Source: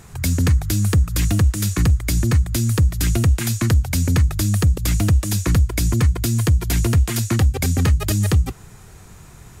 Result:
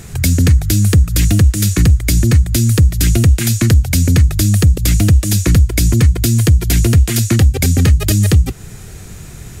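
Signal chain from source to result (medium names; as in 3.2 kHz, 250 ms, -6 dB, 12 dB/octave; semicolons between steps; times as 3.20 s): peaking EQ 1 kHz -9.5 dB 0.97 oct; in parallel at +0.5 dB: compression, threshold -27 dBFS, peak gain reduction 14.5 dB; on the sum: trim +4.5 dB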